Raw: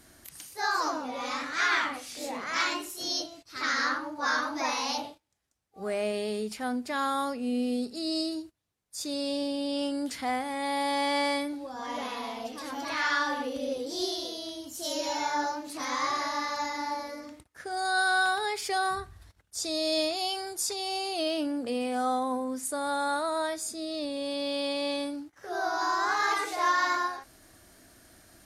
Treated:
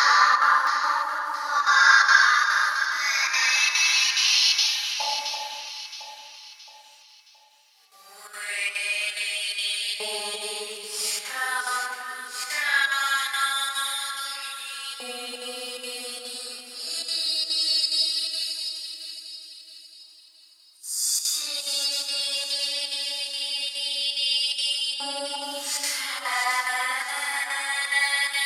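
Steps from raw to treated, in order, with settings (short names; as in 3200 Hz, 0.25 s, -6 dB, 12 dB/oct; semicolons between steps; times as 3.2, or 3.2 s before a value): high shelf 3500 Hz +10.5 dB; notches 50/100/150/200/250 Hz; in parallel at -1 dB: compressor, threshold -35 dBFS, peak gain reduction 15 dB; on the sum: Paulstretch 4.1×, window 0.10 s, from 3.83; chopper 2.4 Hz, depth 65%, duty 85%; LFO high-pass saw up 0.2 Hz 860–3300 Hz; echo with dull and thin repeats by turns 0.335 s, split 1200 Hz, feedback 63%, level -5 dB; on a send at -7.5 dB: reverb RT60 0.10 s, pre-delay 3 ms; on the sum: gain +1.5 dB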